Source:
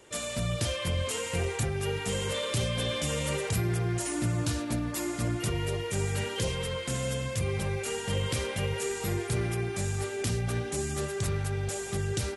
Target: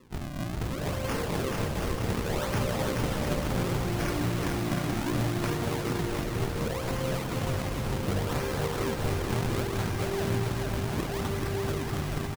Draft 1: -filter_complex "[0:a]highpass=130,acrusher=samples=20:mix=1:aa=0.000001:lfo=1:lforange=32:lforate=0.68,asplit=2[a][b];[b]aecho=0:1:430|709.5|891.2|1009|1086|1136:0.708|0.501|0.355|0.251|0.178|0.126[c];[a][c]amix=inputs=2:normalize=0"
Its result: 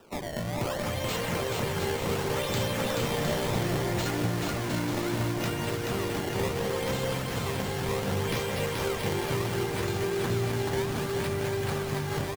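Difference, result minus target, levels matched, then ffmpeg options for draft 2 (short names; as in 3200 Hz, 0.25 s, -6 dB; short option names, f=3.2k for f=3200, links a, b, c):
decimation with a swept rate: distortion -7 dB
-filter_complex "[0:a]highpass=130,acrusher=samples=56:mix=1:aa=0.000001:lfo=1:lforange=89.6:lforate=0.68,asplit=2[a][b];[b]aecho=0:1:430|709.5|891.2|1009|1086|1136:0.708|0.501|0.355|0.251|0.178|0.126[c];[a][c]amix=inputs=2:normalize=0"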